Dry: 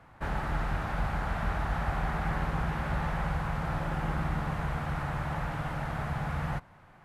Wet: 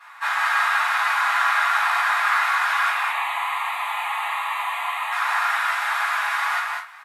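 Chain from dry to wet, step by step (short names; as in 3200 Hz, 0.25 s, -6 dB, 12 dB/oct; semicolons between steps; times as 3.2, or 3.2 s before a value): steep high-pass 1000 Hz 36 dB/oct; 2.89–5.12 fixed phaser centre 1500 Hz, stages 6; loudspeakers at several distances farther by 55 m -10 dB, 68 m -4 dB; reverb RT60 0.30 s, pre-delay 4 ms, DRR -7.5 dB; gain +7.5 dB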